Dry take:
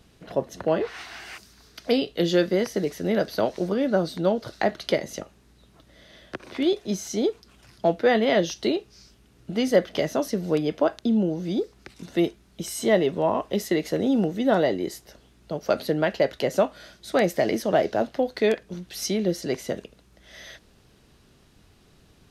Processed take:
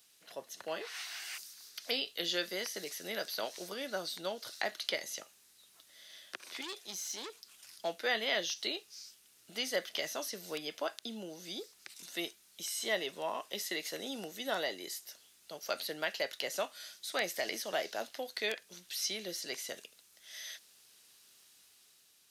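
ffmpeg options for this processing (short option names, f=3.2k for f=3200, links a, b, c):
-filter_complex "[0:a]asettb=1/sr,asplit=3[a][b][c];[a]atrim=end=6.614[d];[b]atrim=start=6.61:end=7.3,asetpts=PTS-STARTPTS,afade=t=in:d=0.004:c=qsin,afade=t=out:st=0.686:d=0.004:c=qsin,aeval=exprs='(tanh(20*val(0)+0.4)-tanh(0.4))/20':c=same[e];[c]atrim=start=7.296[f];[d][e]acrossfade=d=0.004:c1=hsin:c2=qsin[g];[g][f]acrossfade=d=0.004:c1=qsin:c2=hsin,acrossover=split=4500[h][i];[i]acompressor=threshold=-48dB:ratio=4:attack=1:release=60[j];[h][j]amix=inputs=2:normalize=0,aderivative,dynaudnorm=f=100:g=13:m=3.5dB,volume=2.5dB"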